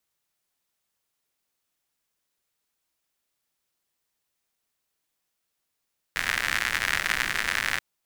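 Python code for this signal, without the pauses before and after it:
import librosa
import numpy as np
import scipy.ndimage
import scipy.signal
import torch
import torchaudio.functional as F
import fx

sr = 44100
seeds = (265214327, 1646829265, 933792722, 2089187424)

y = fx.rain(sr, seeds[0], length_s=1.63, drops_per_s=110.0, hz=1800.0, bed_db=-13)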